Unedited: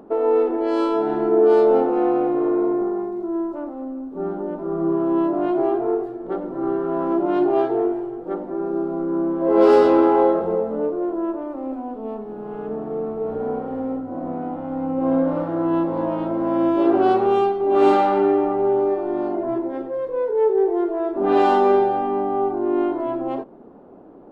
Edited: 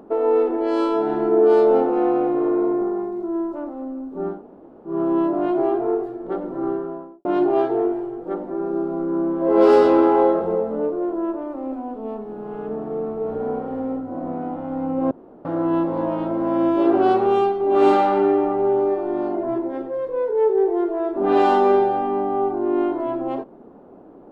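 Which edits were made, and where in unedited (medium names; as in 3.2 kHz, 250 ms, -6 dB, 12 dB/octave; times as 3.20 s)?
4.36–4.92 s: room tone, crossfade 0.16 s
6.54–7.25 s: studio fade out
15.11–15.45 s: room tone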